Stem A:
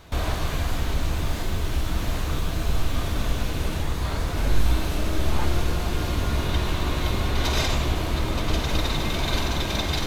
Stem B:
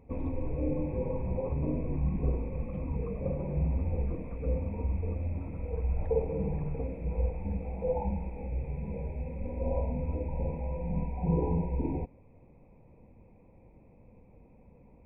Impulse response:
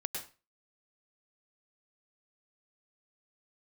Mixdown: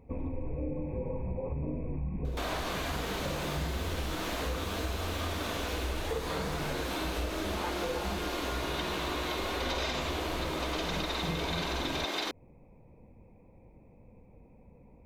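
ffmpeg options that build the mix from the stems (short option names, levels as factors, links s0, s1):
-filter_complex "[0:a]acrossover=split=5100[s0][s1];[s1]acompressor=threshold=0.00708:ratio=4:attack=1:release=60[s2];[s0][s2]amix=inputs=2:normalize=0,highpass=f=280:w=0.5412,highpass=f=280:w=1.3066,adelay=2250,volume=1.33[s3];[1:a]volume=1.06[s4];[s3][s4]amix=inputs=2:normalize=0,acompressor=threshold=0.0282:ratio=4"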